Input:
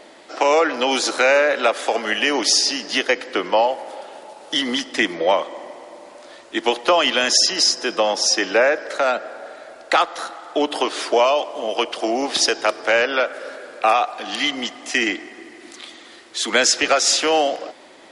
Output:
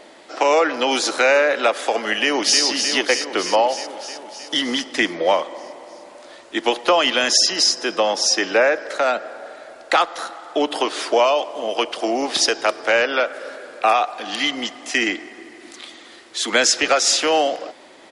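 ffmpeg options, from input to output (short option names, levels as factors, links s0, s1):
-filter_complex "[0:a]asplit=2[s0][s1];[s1]afade=t=in:st=2.15:d=0.01,afade=t=out:st=2.62:d=0.01,aecho=0:1:310|620|930|1240|1550|1860|2170|2480|2790|3100|3410:0.501187|0.350831|0.245582|0.171907|0.120335|0.0842345|0.0589642|0.0412749|0.0288924|0.0202247|0.0141573[s2];[s0][s2]amix=inputs=2:normalize=0"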